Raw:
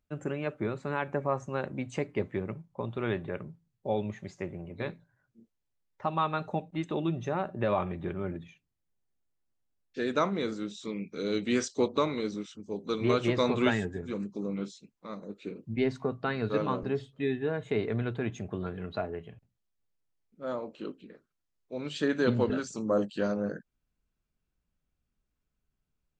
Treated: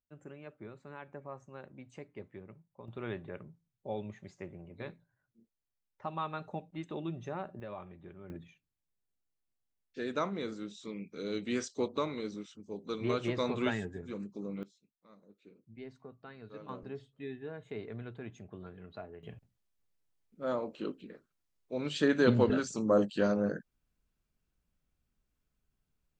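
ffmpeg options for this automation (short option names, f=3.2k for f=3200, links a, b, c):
-af "asetnsamples=n=441:p=0,asendcmd='2.88 volume volume -8dB;7.6 volume volume -16dB;8.3 volume volume -6dB;14.63 volume volume -19dB;16.69 volume volume -12dB;19.23 volume volume 1dB',volume=-15.5dB"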